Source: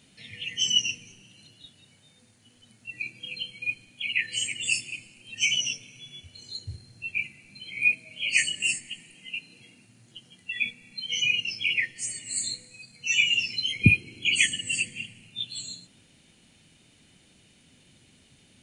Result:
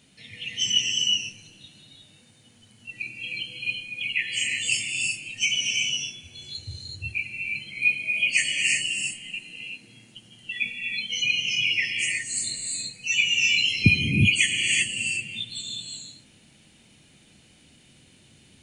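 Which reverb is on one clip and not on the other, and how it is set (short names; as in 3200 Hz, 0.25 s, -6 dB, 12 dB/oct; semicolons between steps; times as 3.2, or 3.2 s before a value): non-linear reverb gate 0.4 s rising, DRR 0 dB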